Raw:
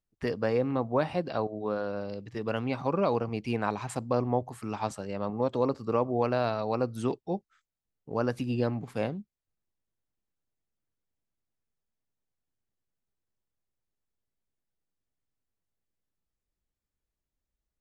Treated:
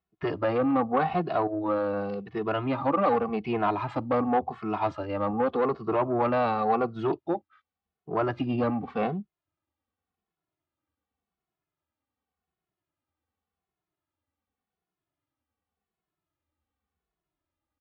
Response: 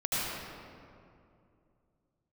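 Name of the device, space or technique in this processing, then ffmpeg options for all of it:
barber-pole flanger into a guitar amplifier: -filter_complex "[0:a]asplit=2[s0][s1];[s1]adelay=2.3,afreqshift=-0.88[s2];[s0][s2]amix=inputs=2:normalize=1,asoftclip=type=tanh:threshold=0.0447,highpass=76,equalizer=f=81:t=q:w=4:g=9,equalizer=f=120:t=q:w=4:g=-4,equalizer=f=310:t=q:w=4:g=6,equalizer=f=770:t=q:w=4:g=8,equalizer=f=1200:t=q:w=4:g=8,lowpass=f=3600:w=0.5412,lowpass=f=3600:w=1.3066,volume=2"

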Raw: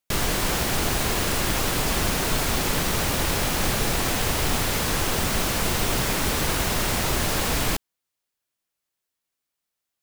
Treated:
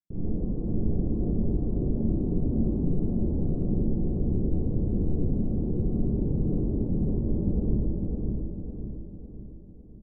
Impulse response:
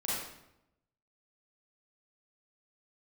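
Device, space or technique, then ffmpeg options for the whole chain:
next room: -filter_complex "[0:a]asettb=1/sr,asplit=3[s0][s1][s2];[s0]atrim=end=3.804[s3];[s1]atrim=start=3.8:end=4.51,asetpts=PTS-STARTPTS,afade=t=in:d=0.004:c=qsin,afade=t=out:st=0.706:d=0.004:c=qsin,lowpass=f=1200:p=1[s4];[s2]atrim=start=4.506[s5];[s3][s4]acrossfade=d=0.004:c1=hsin:c2=qsin[s6];[s6][s5]acrossfade=d=0.004:c1=qsin:c2=hsin,lowpass=f=360:w=0.5412,lowpass=f=360:w=1.3066,asplit=2[s7][s8];[s8]adelay=554,lowpass=f=3900:p=1,volume=0.708,asplit=2[s9][s10];[s10]adelay=554,lowpass=f=3900:p=1,volume=0.49,asplit=2[s11][s12];[s12]adelay=554,lowpass=f=3900:p=1,volume=0.49,asplit=2[s13][s14];[s14]adelay=554,lowpass=f=3900:p=1,volume=0.49,asplit=2[s15][s16];[s16]adelay=554,lowpass=f=3900:p=1,volume=0.49,asplit=2[s17][s18];[s18]adelay=554,lowpass=f=3900:p=1,volume=0.49[s19];[s7][s9][s11][s13][s15][s17][s19]amix=inputs=7:normalize=0[s20];[1:a]atrim=start_sample=2205[s21];[s20][s21]afir=irnorm=-1:irlink=0,volume=0.562"

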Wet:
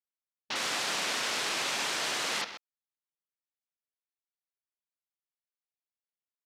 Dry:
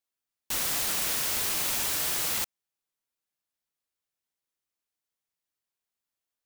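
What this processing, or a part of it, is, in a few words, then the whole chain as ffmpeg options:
over-cleaned archive recording: -af "highpass=200,lowpass=5900,equalizer=f=1400:w=0.35:g=3.5,aecho=1:1:129:0.335,afwtdn=0.00631"

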